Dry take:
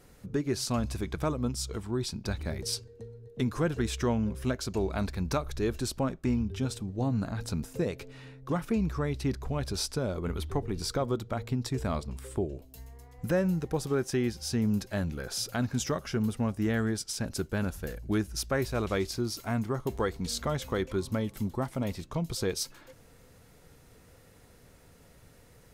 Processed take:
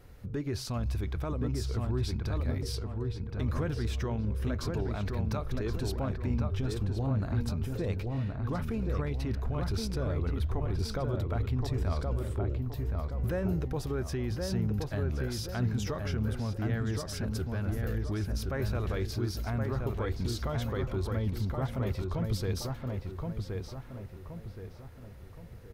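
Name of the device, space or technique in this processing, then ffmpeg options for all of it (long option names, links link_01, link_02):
car stereo with a boomy subwoofer: -filter_complex "[0:a]lowshelf=frequency=130:width_type=q:width=1.5:gain=6.5,alimiter=level_in=1.5dB:limit=-24dB:level=0:latency=1:release=14,volume=-1.5dB,equalizer=frequency=8100:width_type=o:width=1.2:gain=-9,asplit=2[link_01][link_02];[link_02]adelay=1072,lowpass=frequency=2100:poles=1,volume=-3dB,asplit=2[link_03][link_04];[link_04]adelay=1072,lowpass=frequency=2100:poles=1,volume=0.43,asplit=2[link_05][link_06];[link_06]adelay=1072,lowpass=frequency=2100:poles=1,volume=0.43,asplit=2[link_07][link_08];[link_08]adelay=1072,lowpass=frequency=2100:poles=1,volume=0.43,asplit=2[link_09][link_10];[link_10]adelay=1072,lowpass=frequency=2100:poles=1,volume=0.43,asplit=2[link_11][link_12];[link_12]adelay=1072,lowpass=frequency=2100:poles=1,volume=0.43[link_13];[link_01][link_03][link_05][link_07][link_09][link_11][link_13]amix=inputs=7:normalize=0"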